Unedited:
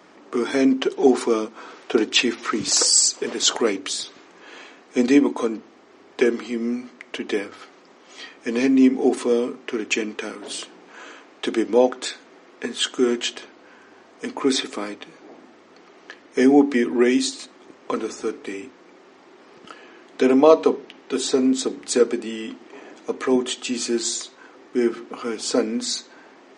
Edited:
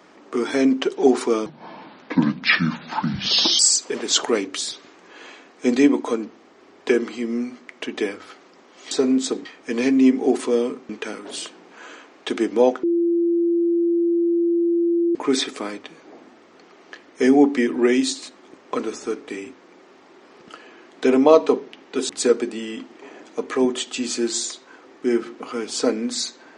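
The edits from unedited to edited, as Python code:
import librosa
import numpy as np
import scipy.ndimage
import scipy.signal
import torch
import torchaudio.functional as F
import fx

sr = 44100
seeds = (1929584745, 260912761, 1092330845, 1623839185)

y = fx.edit(x, sr, fx.speed_span(start_s=1.46, length_s=1.45, speed=0.68),
    fx.cut(start_s=9.67, length_s=0.39),
    fx.bleep(start_s=12.0, length_s=2.32, hz=341.0, db=-16.0),
    fx.move(start_s=21.26, length_s=0.54, to_s=8.23), tone=tone)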